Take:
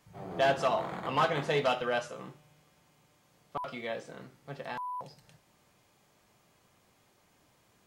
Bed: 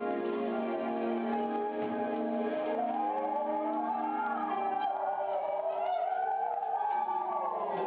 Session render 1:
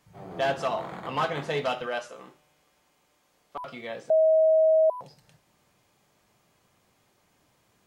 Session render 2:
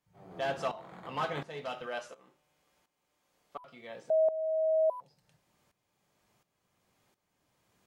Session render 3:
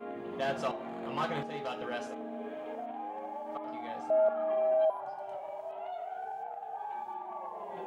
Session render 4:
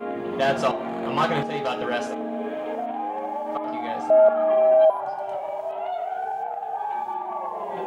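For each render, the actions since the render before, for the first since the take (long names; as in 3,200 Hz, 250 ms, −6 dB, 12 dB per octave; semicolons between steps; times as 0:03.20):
0:01.86–0:03.60: parametric band 130 Hz −14 dB 1.1 octaves; 0:04.10–0:04.90: beep over 636 Hz −16.5 dBFS
tuned comb filter 180 Hz, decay 0.49 s, harmonics odd, mix 40%; shaped tremolo saw up 1.4 Hz, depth 80%
mix in bed −8 dB
level +11 dB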